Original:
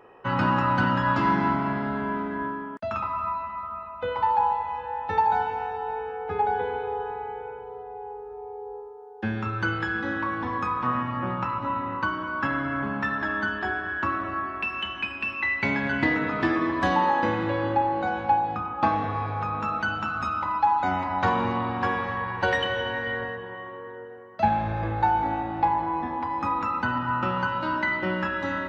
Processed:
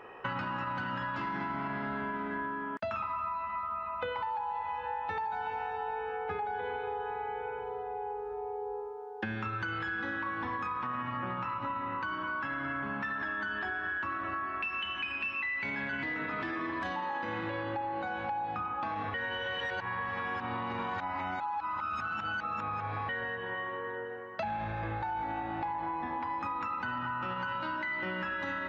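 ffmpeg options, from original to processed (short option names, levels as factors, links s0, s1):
-filter_complex "[0:a]asplit=3[s0][s1][s2];[s0]atrim=end=19.142[s3];[s1]atrim=start=19.138:end=23.092,asetpts=PTS-STARTPTS,areverse[s4];[s2]atrim=start=23.088[s5];[s3][s4]acrossfade=d=0.004:c1=hsin:c2=hsin[s6];[s6][s5]acrossfade=d=0.004:c1=hsin:c2=hsin,equalizer=f=2200:w=0.57:g=7,alimiter=limit=0.133:level=0:latency=1,acompressor=threshold=0.0224:ratio=6"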